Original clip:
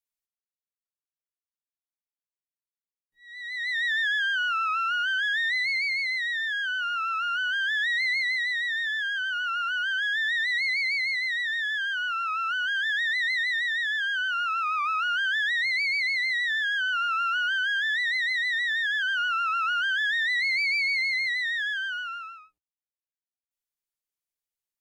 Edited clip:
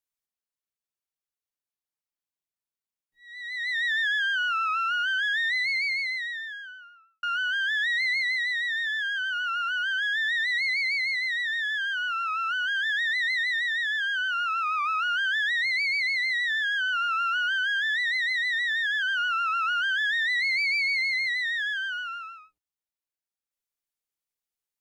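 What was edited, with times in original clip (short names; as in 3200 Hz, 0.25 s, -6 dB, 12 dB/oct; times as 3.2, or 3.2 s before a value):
5.89–7.23 studio fade out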